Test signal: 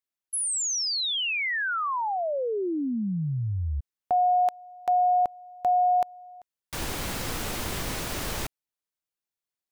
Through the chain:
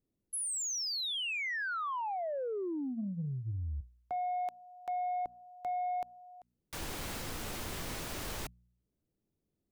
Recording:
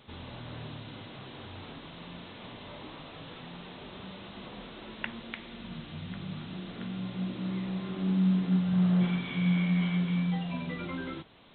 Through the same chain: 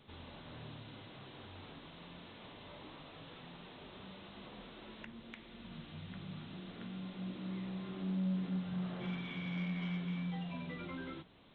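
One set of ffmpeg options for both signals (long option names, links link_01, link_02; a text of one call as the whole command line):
ffmpeg -i in.wav -filter_complex "[0:a]bandreject=frequency=60:width_type=h:width=6,bandreject=frequency=120:width_type=h:width=6,bandreject=frequency=180:width_type=h:width=6,bandreject=frequency=240:width_type=h:width=6,acrossover=split=380[link_01][link_02];[link_01]acompressor=mode=upward:threshold=-51dB:ratio=2.5:attack=0.33:release=44:knee=2.83:detection=peak[link_03];[link_02]alimiter=limit=-23.5dB:level=0:latency=1:release=446[link_04];[link_03][link_04]amix=inputs=2:normalize=0,asoftclip=type=tanh:threshold=-22dB,volume=-7dB" out.wav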